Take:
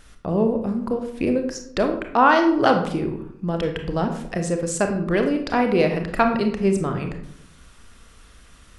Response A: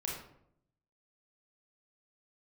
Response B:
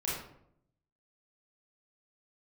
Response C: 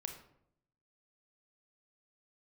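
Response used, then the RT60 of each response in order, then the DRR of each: C; 0.70, 0.70, 0.70 s; -3.0, -7.0, 4.5 dB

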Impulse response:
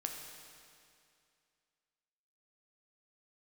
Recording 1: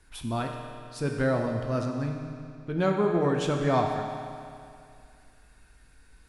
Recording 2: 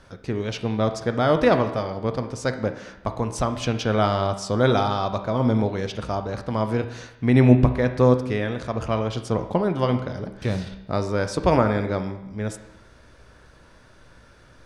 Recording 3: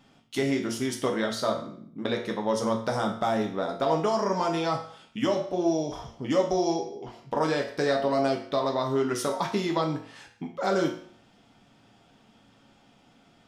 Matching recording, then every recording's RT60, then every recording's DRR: 1; 2.4, 0.90, 0.55 s; 2.0, 7.5, 1.0 dB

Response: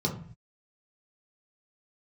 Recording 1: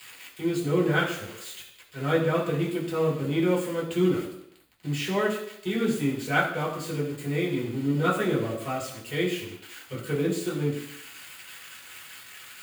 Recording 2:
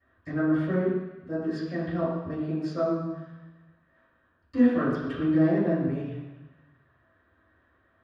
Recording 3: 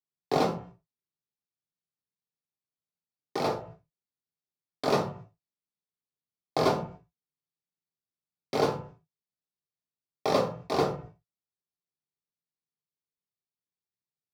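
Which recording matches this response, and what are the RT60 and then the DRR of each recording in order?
3; 0.75, 1.1, 0.50 s; -6.0, -16.5, -1.5 dB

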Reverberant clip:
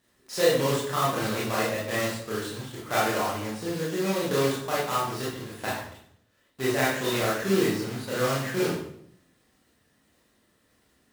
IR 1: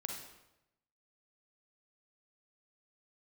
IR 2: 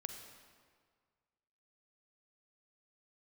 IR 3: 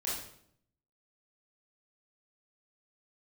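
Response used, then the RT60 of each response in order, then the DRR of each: 3; 0.90, 1.8, 0.65 s; 1.0, 5.5, -7.5 dB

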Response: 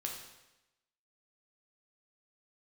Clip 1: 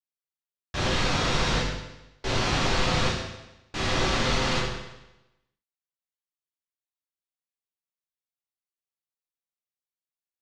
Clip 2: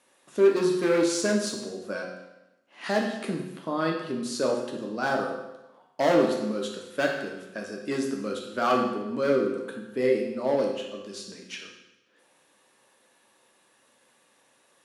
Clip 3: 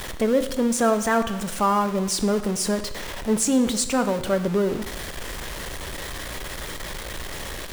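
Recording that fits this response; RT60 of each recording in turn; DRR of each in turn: 2; 0.95, 0.95, 0.95 s; -7.5, 0.0, 9.0 dB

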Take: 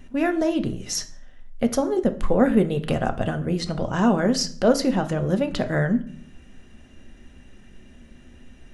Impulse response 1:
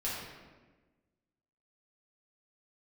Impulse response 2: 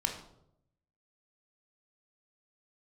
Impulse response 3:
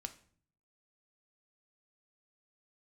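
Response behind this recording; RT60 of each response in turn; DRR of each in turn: 3; 1.3, 0.75, 0.50 s; -8.5, 2.0, 7.5 dB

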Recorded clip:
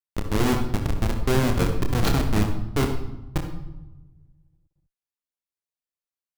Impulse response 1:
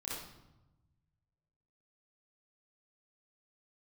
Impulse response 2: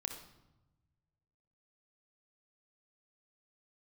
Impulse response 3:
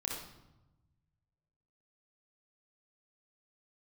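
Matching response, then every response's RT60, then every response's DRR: 2; 0.95, 1.0, 0.95 s; -9.0, 3.0, -3.5 dB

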